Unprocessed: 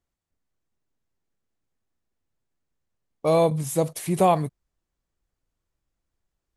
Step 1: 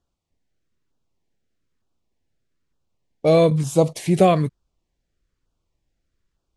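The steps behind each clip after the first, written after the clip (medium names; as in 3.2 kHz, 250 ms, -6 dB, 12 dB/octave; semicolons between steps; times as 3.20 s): LFO notch saw down 1.1 Hz 630–2200 Hz; low-pass 6.4 kHz 12 dB/octave; trim +6.5 dB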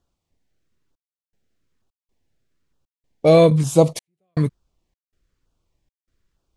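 trance gate "xxxxx..xxx.xxxx." 79 bpm -60 dB; trim +3 dB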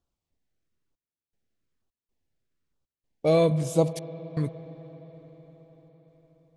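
on a send at -14.5 dB: high-pass 49 Hz + reverberation RT60 5.4 s, pre-delay 47 ms; on the sum: trim -8.5 dB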